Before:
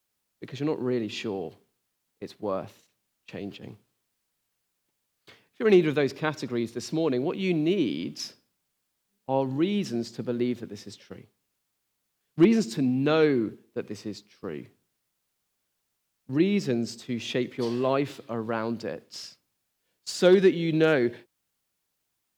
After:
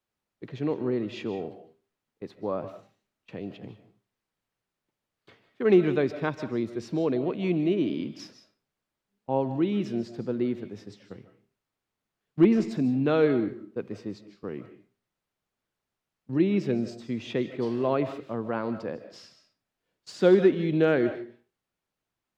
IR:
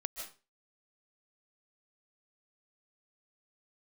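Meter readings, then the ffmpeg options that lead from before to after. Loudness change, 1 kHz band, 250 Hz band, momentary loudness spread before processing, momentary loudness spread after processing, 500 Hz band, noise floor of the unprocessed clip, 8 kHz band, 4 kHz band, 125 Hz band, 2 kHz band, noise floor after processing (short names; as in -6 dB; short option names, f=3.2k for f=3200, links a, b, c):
-0.5 dB, -1.0 dB, 0.0 dB, 19 LU, 20 LU, -0.5 dB, -79 dBFS, under -10 dB, -7.5 dB, 0.0 dB, -3.5 dB, under -85 dBFS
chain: -filter_complex "[0:a]lowpass=f=1.7k:p=1,asplit=2[a][b];[1:a]atrim=start_sample=2205[c];[b][c]afir=irnorm=-1:irlink=0,volume=-2dB[d];[a][d]amix=inputs=2:normalize=0,volume=-4.5dB"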